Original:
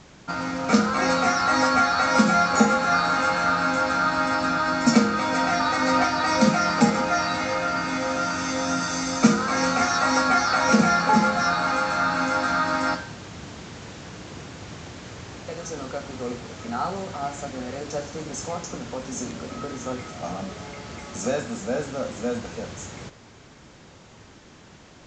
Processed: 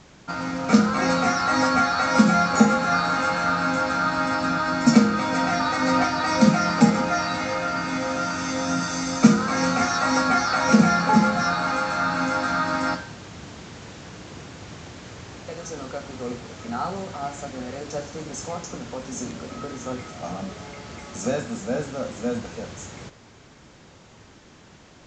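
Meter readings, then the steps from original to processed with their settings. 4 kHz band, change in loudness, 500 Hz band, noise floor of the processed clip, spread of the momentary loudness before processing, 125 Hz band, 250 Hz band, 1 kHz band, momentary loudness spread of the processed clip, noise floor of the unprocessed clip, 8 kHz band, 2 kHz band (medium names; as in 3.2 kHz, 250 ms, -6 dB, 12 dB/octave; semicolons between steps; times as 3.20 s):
-1.0 dB, +0.5 dB, -0.5 dB, -50 dBFS, 19 LU, +3.0 dB, +2.5 dB, -1.0 dB, 21 LU, -49 dBFS, -1.0 dB, -1.0 dB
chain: dynamic bell 160 Hz, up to +6 dB, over -34 dBFS, Q 0.94; trim -1 dB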